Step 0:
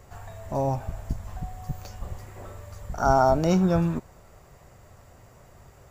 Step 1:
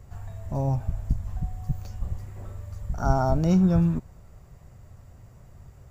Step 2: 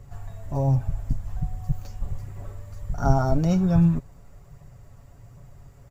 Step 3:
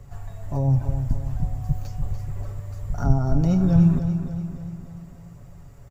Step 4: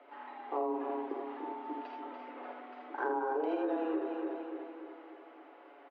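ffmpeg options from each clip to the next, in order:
ffmpeg -i in.wav -af "bass=frequency=250:gain=12,treble=frequency=4000:gain=1,volume=-6.5dB" out.wav
ffmpeg -i in.wav -af "aphaser=in_gain=1:out_gain=1:delay=4.6:decay=0.26:speed=1.3:type=triangular,aecho=1:1:7.1:0.43" out.wav
ffmpeg -i in.wav -filter_complex "[0:a]acrossover=split=370[link_01][link_02];[link_02]acompressor=threshold=-34dB:ratio=6[link_03];[link_01][link_03]amix=inputs=2:normalize=0,asplit=2[link_04][link_05];[link_05]aecho=0:1:291|582|873|1164|1455|1746:0.355|0.192|0.103|0.0559|0.0302|0.0163[link_06];[link_04][link_06]amix=inputs=2:normalize=0,volume=1.5dB" out.wav
ffmpeg -i in.wav -af "highpass=frequency=240:width_type=q:width=0.5412,highpass=frequency=240:width_type=q:width=1.307,lowpass=frequency=3200:width_type=q:width=0.5176,lowpass=frequency=3200:width_type=q:width=0.7071,lowpass=frequency=3200:width_type=q:width=1.932,afreqshift=150,aecho=1:1:52|80:0.531|0.596,acompressor=threshold=-30dB:ratio=6" out.wav

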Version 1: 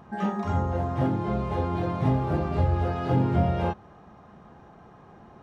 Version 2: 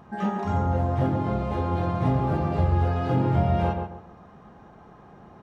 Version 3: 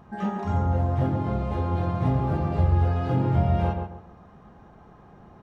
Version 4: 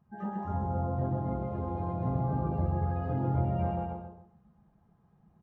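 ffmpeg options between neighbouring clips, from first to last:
ffmpeg -i in.wav -filter_complex "[0:a]asplit=2[link_01][link_02];[link_02]adelay=136,lowpass=frequency=1800:poles=1,volume=-4.5dB,asplit=2[link_03][link_04];[link_04]adelay=136,lowpass=frequency=1800:poles=1,volume=0.3,asplit=2[link_05][link_06];[link_06]adelay=136,lowpass=frequency=1800:poles=1,volume=0.3,asplit=2[link_07][link_08];[link_08]adelay=136,lowpass=frequency=1800:poles=1,volume=0.3[link_09];[link_01][link_03][link_05][link_07][link_09]amix=inputs=5:normalize=0" out.wav
ffmpeg -i in.wav -af "lowshelf=frequency=93:gain=8,volume=-2.5dB" out.wav
ffmpeg -i in.wav -filter_complex "[0:a]afftdn=noise_reduction=15:noise_floor=-37,asplit=2[link_01][link_02];[link_02]aecho=0:1:130|227.5|300.6|355.5|396.6:0.631|0.398|0.251|0.158|0.1[link_03];[link_01][link_03]amix=inputs=2:normalize=0,volume=-9dB" out.wav

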